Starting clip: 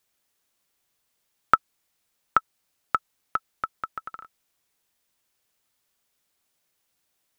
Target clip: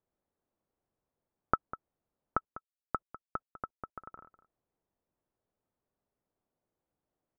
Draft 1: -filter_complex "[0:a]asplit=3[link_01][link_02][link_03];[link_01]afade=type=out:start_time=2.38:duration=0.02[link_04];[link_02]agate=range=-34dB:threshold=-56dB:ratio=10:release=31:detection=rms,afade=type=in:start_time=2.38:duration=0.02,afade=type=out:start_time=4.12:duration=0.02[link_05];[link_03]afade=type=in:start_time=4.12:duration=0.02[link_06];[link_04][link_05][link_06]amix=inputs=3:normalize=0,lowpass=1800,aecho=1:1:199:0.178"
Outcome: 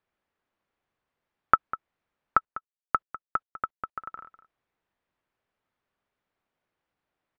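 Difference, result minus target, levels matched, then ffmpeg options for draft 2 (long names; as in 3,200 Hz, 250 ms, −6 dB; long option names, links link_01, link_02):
500 Hz band −8.5 dB
-filter_complex "[0:a]asplit=3[link_01][link_02][link_03];[link_01]afade=type=out:start_time=2.38:duration=0.02[link_04];[link_02]agate=range=-34dB:threshold=-56dB:ratio=10:release=31:detection=rms,afade=type=in:start_time=2.38:duration=0.02,afade=type=out:start_time=4.12:duration=0.02[link_05];[link_03]afade=type=in:start_time=4.12:duration=0.02[link_06];[link_04][link_05][link_06]amix=inputs=3:normalize=0,lowpass=690,aecho=1:1:199:0.178"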